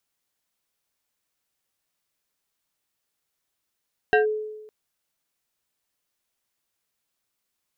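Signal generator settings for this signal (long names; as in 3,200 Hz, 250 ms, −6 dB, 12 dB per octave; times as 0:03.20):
two-operator FM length 0.56 s, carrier 429 Hz, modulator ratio 2.69, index 1.4, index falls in 0.13 s linear, decay 1.08 s, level −13 dB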